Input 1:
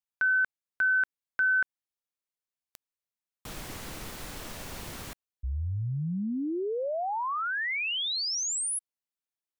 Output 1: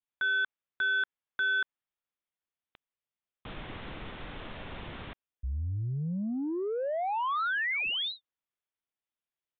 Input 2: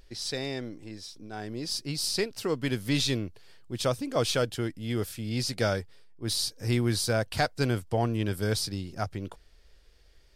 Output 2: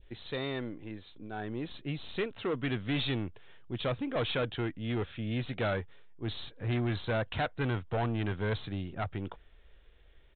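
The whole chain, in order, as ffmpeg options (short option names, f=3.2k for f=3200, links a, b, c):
-af "adynamicequalizer=threshold=0.01:dfrequency=1300:dqfactor=0.89:tfrequency=1300:tqfactor=0.89:attack=5:release=100:ratio=0.375:range=2:mode=boostabove:tftype=bell,aresample=8000,asoftclip=type=tanh:threshold=-26.5dB,aresample=44100"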